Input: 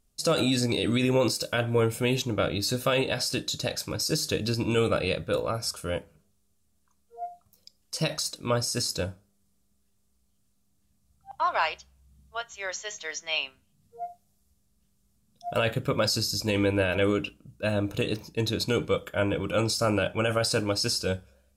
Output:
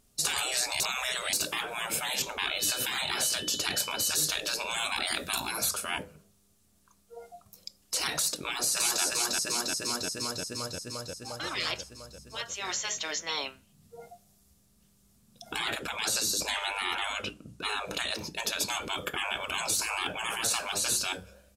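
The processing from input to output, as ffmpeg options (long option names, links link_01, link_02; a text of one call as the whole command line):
ffmpeg -i in.wav -filter_complex "[0:a]asettb=1/sr,asplit=3[link_01][link_02][link_03];[link_01]atrim=end=2.444[link_04];[link_02]atrim=start=2.44:end=4.12,asetpts=PTS-STARTPTS,afade=type=in:duration=0.004:curve=qsin,afade=type=out:start_time=1.676:duration=0.004:curve=qsin,aeval=exprs='val(0)+0.00447*sin(2*PI*3000*n/s)':channel_layout=same[link_05];[link_03]atrim=start=4.116[link_06];[link_04][link_05]acrossfade=duration=0.004:curve1=hsin:curve2=qsin[link_07];[link_07][link_06]acrossfade=duration=0.004:curve1=qsin:curve2=hsin,asettb=1/sr,asplit=3[link_08][link_09][link_10];[link_08]atrim=end=5.074[link_11];[link_09]atrim=start=5.07:end=5.69,asetpts=PTS-STARTPTS,afade=type=in:duration=0.004:curve=qsin,afade=type=out:start_time=0.616:duration=0.004:curve=qsin,highshelf=frequency=3800:gain=11[link_12];[link_10]atrim=start=5.686[link_13];[link_11][link_12]acrossfade=duration=0.004:curve1=hsin:curve2=qsin[link_14];[link_14][link_13]acrossfade=duration=0.004:curve1=qsin:curve2=hsin,asplit=2[link_15][link_16];[link_16]afade=type=in:start_time=8.43:duration=0.01,afade=type=out:start_time=9.03:duration=0.01,aecho=0:1:350|700|1050|1400|1750|2100|2450|2800|3150|3500|3850|4200:0.630957|0.44167|0.309169|0.216418|0.151493|0.106045|0.0742315|0.0519621|0.0363734|0.0254614|0.017823|0.0124761[link_17];[link_15][link_17]amix=inputs=2:normalize=0,asettb=1/sr,asplit=3[link_18][link_19][link_20];[link_18]atrim=end=15.544[link_21];[link_19]atrim=start=15.54:end=18.35,asetpts=PTS-STARTPTS,afade=type=in:duration=0.004:curve=qsin,afade=type=out:start_time=2.806:duration=0.004:curve=qsin,lowpass=11000[link_22];[link_20]atrim=start=18.346[link_23];[link_21][link_22]acrossfade=duration=0.004:curve1=hsin:curve2=qsin[link_24];[link_24][link_23]acrossfade=duration=0.004:curve1=qsin:curve2=hsin,asplit=3[link_25][link_26][link_27];[link_25]atrim=end=0.802[link_28];[link_26]atrim=start=0.798:end=1.332,asetpts=PTS-STARTPTS,areverse[link_29];[link_27]atrim=start=1.328[link_30];[link_28][link_29]acrossfade=duration=0.004:curve1=hsin:curve2=hsin[link_31];[link_31][link_30]acrossfade=duration=0.004:curve1=hsin:curve2=hsin,afftfilt=real='re*lt(hypot(re,im),0.0501)':imag='im*lt(hypot(re,im),0.0501)':win_size=1024:overlap=0.75,lowshelf=frequency=72:gain=-11,volume=8.5dB" out.wav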